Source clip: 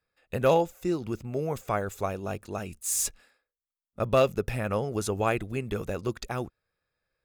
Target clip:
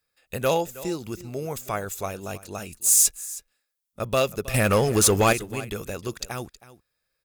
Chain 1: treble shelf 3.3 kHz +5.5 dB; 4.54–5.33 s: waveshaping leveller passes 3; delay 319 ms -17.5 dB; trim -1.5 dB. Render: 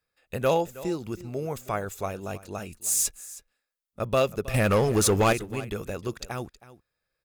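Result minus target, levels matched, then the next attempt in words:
8 kHz band -3.0 dB
treble shelf 3.3 kHz +14 dB; 4.54–5.33 s: waveshaping leveller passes 3; delay 319 ms -17.5 dB; trim -1.5 dB

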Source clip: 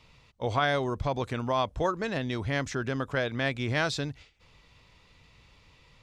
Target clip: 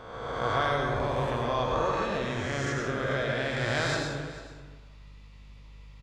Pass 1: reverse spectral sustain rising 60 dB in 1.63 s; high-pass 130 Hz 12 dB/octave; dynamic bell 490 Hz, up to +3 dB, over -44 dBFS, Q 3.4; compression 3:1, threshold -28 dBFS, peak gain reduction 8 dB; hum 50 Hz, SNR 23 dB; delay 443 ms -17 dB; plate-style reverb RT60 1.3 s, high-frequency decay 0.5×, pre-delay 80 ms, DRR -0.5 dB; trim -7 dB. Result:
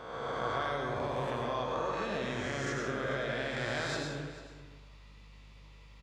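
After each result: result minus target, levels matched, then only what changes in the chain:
compression: peak gain reduction +8 dB; 125 Hz band -2.0 dB
remove: compression 3:1, threshold -28 dBFS, peak gain reduction 8 dB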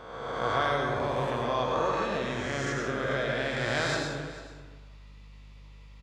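125 Hz band -3.0 dB
remove: high-pass 130 Hz 12 dB/octave

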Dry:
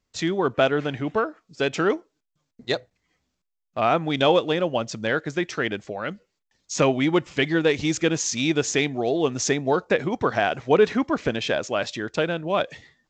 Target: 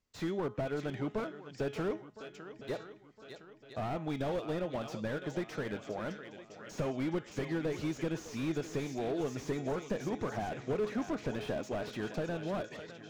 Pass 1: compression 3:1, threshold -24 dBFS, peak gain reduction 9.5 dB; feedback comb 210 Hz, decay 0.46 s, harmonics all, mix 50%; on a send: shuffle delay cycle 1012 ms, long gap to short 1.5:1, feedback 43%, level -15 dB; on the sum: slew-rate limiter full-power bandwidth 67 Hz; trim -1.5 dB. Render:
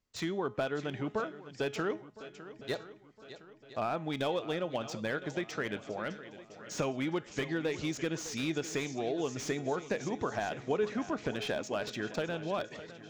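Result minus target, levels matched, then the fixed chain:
slew-rate limiter: distortion -11 dB
compression 3:1, threshold -24 dBFS, peak gain reduction 9.5 dB; feedback comb 210 Hz, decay 0.46 s, harmonics all, mix 50%; on a send: shuffle delay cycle 1012 ms, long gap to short 1.5:1, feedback 43%, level -15 dB; on the sum: slew-rate limiter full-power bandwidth 18.5 Hz; trim -1.5 dB

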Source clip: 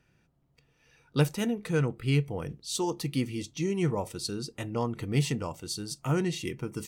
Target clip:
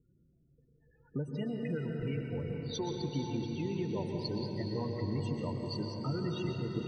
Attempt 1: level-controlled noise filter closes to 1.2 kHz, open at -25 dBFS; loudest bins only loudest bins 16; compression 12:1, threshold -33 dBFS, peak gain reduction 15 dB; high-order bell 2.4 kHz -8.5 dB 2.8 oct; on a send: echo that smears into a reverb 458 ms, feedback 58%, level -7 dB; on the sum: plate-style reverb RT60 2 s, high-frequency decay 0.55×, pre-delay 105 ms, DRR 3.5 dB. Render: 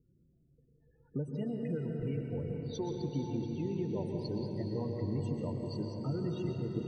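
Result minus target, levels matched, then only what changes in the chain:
2 kHz band -8.0 dB
remove: high-order bell 2.4 kHz -8.5 dB 2.8 oct

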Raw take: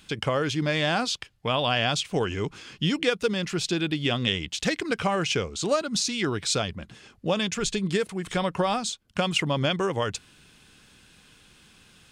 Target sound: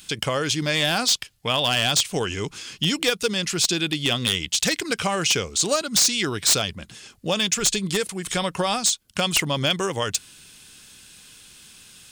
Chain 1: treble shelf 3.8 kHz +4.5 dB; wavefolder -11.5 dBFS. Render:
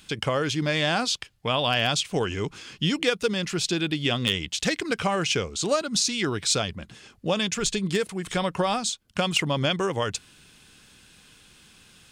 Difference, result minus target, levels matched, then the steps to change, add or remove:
8 kHz band -4.5 dB
change: treble shelf 3.8 kHz +16.5 dB

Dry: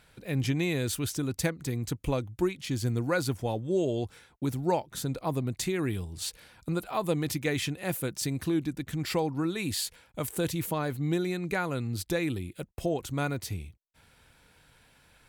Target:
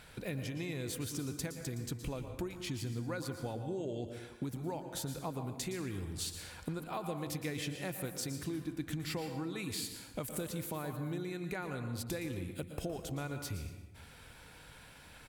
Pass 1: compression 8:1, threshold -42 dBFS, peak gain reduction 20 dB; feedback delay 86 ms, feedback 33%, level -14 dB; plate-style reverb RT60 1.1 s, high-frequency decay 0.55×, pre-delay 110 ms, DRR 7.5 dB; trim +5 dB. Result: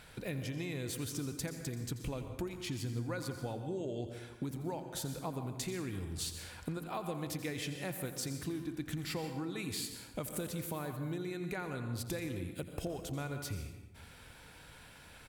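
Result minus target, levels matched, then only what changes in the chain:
echo 29 ms early
change: feedback delay 115 ms, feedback 33%, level -14 dB

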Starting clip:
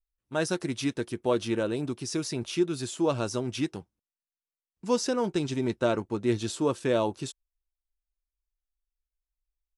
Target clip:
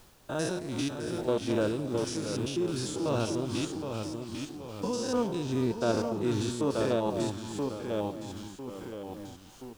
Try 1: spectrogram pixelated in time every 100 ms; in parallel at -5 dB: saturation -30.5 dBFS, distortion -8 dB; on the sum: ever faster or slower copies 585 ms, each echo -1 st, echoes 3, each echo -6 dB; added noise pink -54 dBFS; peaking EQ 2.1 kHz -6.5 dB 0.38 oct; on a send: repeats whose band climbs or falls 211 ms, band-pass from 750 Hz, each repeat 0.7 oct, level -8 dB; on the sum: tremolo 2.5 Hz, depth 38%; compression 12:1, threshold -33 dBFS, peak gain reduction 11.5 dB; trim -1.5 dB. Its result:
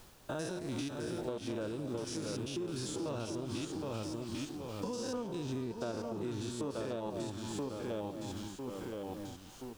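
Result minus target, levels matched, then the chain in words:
compression: peak gain reduction +11.5 dB; saturation: distortion +9 dB
spectrogram pixelated in time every 100 ms; in parallel at -5 dB: saturation -21.5 dBFS, distortion -17 dB; on the sum: ever faster or slower copies 585 ms, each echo -1 st, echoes 3, each echo -6 dB; added noise pink -54 dBFS; peaking EQ 2.1 kHz -6.5 dB 0.38 oct; on a send: repeats whose band climbs or falls 211 ms, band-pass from 750 Hz, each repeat 0.7 oct, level -8 dB; on the sum: tremolo 2.5 Hz, depth 38%; trim -1.5 dB

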